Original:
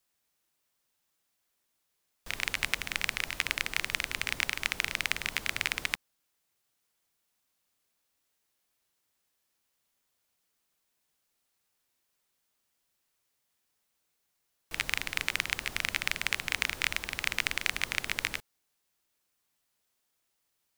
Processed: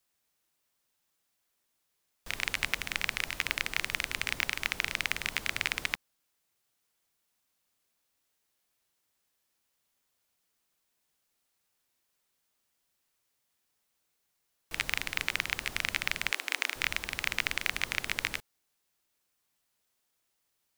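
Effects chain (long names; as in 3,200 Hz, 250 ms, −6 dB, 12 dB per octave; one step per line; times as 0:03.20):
0:16.31–0:16.76: Chebyshev high-pass filter 280 Hz, order 4
wave folding −9 dBFS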